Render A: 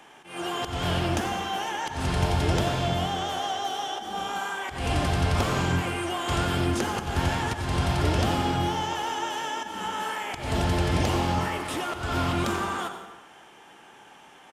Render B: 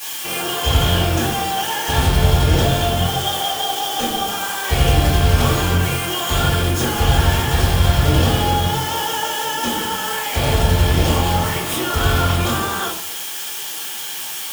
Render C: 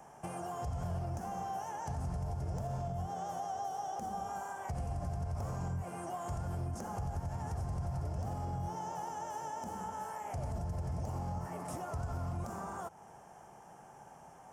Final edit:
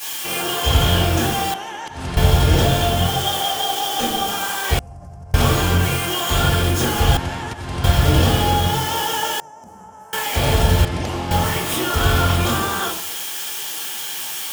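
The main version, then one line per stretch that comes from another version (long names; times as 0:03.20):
B
0:01.54–0:02.17: punch in from A
0:04.79–0:05.34: punch in from C
0:07.17–0:07.84: punch in from A
0:09.40–0:10.13: punch in from C
0:10.85–0:11.31: punch in from A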